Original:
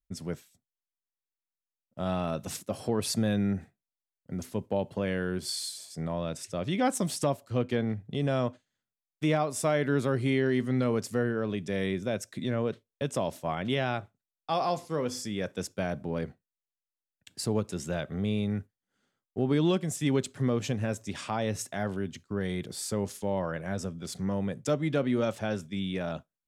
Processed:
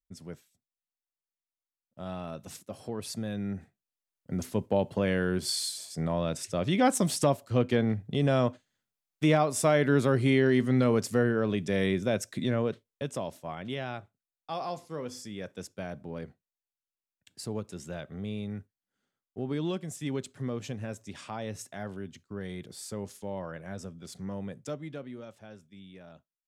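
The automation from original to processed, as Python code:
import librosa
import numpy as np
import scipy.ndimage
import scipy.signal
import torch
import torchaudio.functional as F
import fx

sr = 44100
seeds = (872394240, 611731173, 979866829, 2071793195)

y = fx.gain(x, sr, db=fx.line((3.31, -7.5), (4.34, 3.0), (12.4, 3.0), (13.42, -6.5), (24.55, -6.5), (25.25, -17.0)))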